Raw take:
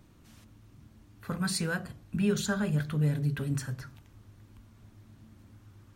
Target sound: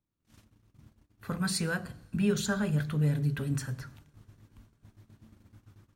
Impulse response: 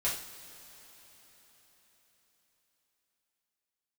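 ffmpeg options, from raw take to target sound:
-filter_complex "[0:a]agate=range=-29dB:threshold=-53dB:ratio=16:detection=peak,asplit=2[a][b];[1:a]atrim=start_sample=2205,adelay=89[c];[b][c]afir=irnorm=-1:irlink=0,volume=-28.5dB[d];[a][d]amix=inputs=2:normalize=0"

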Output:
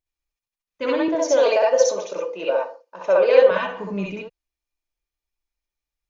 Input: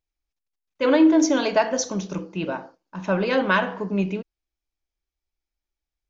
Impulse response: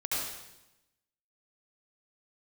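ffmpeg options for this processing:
-filter_complex "[0:a]alimiter=limit=-13dB:level=0:latency=1:release=206,asettb=1/sr,asplit=3[a][b][c];[a]atrim=end=1.084[d];[b]atrim=start=1.08:end=3.51,asetpts=PTS-STARTPTS,afade=t=in:d=0.004:c=qsin,afade=t=out:st=2.426:d=0.004:c=qsin,highpass=f=510:t=q:w=4.9[e];[c]atrim=start=3.506[f];[d][e]acrossfade=d=0.004:c1=hsin:c2=qsin[g];[g][f]acrossfade=d=0.004:c1=qsin:c2=hsin[h];[1:a]atrim=start_sample=2205,atrim=end_sample=3528,asetrate=48510,aresample=44100[i];[h][i]afir=irnorm=-1:irlink=0"

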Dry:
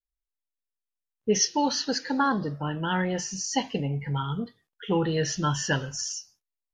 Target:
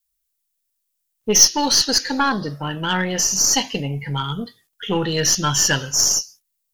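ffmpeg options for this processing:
-af "crystalizer=i=5:c=0,aeval=exprs='1.26*(cos(1*acos(clip(val(0)/1.26,-1,1)))-cos(1*PI/2))+0.0794*(cos(8*acos(clip(val(0)/1.26,-1,1)))-cos(8*PI/2))':c=same,acontrast=55,volume=-3dB"

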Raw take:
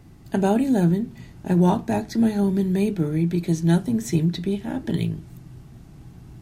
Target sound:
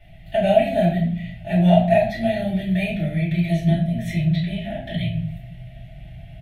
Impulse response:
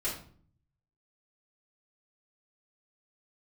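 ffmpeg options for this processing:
-filter_complex "[0:a]firequalizer=gain_entry='entry(160,0);entry(250,-13);entry(430,-19);entry(670,15);entry(990,-23);entry(1900,10);entry(3300,11);entry(4700,-8);entry(7100,-14);entry(10000,-5)':delay=0.05:min_phase=1,asettb=1/sr,asplit=3[a][b][c];[a]atrim=end=3.684[d];[b]atrim=start=3.68:end=5.26,asetpts=PTS-STARTPTS,afade=t=in:d=0.004:c=qsin,afade=t=out:st=1.576:d=0.004:c=qsin,acrossover=split=230[e][f];[f]acompressor=threshold=-31dB:ratio=6[g];[e][g]amix=inputs=2:normalize=0[h];[c]atrim=start=5.256[i];[d][h]acrossfade=d=0.004:c1=hsin:c2=qsin[j];[j][i]acrossfade=d=0.004:c1=qsin:c2=hsin[k];[1:a]atrim=start_sample=2205[l];[k][l]afir=irnorm=-1:irlink=0,volume=-3dB"

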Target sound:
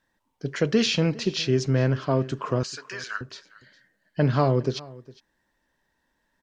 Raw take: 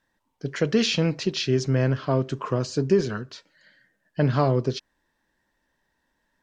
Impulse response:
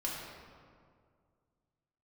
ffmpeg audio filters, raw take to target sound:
-filter_complex "[0:a]asettb=1/sr,asplit=3[a][b][c];[a]atrim=end=2.634[d];[b]atrim=start=2.63:end=3.21,asetpts=PTS-STARTPTS,afade=t=in:d=0.004:c=qsin,afade=t=out:st=0.576:d=0.004:c=qsin,highpass=f=1.5k:t=q:w=1.9[e];[c]atrim=start=3.206[f];[d][e]acrossfade=d=0.004:c1=hsin:c2=qsin[g];[g][f]acrossfade=d=0.004:c1=qsin:c2=hsin,asplit=2[h][i];[i]aecho=0:1:408:0.0891[j];[h][j]amix=inputs=2:normalize=0"

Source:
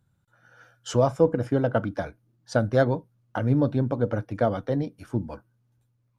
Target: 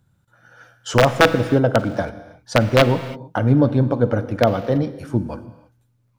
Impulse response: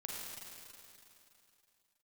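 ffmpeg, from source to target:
-filter_complex "[0:a]aeval=exprs='(mod(3.35*val(0)+1,2)-1)/3.35':c=same,acrossover=split=4400[a][b];[b]acompressor=threshold=-35dB:ratio=4:attack=1:release=60[c];[a][c]amix=inputs=2:normalize=0,asplit=2[d][e];[1:a]atrim=start_sample=2205,afade=t=out:st=0.39:d=0.01,atrim=end_sample=17640[f];[e][f]afir=irnorm=-1:irlink=0,volume=-7.5dB[g];[d][g]amix=inputs=2:normalize=0,volume=5dB"

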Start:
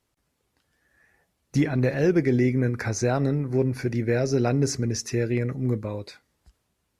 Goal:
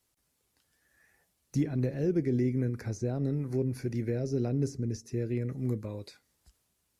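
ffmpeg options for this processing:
-filter_complex "[0:a]highshelf=f=4.2k:g=11.5,acrossover=split=500[a][b];[b]acompressor=threshold=-41dB:ratio=12[c];[a][c]amix=inputs=2:normalize=0,volume=-6dB"

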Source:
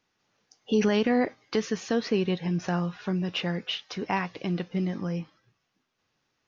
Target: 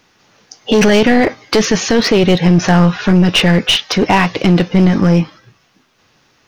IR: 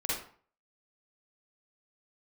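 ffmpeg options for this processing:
-af "apsyclip=24dB,aeval=exprs='clip(val(0),-1,0.422)':c=same,volume=-2.5dB"

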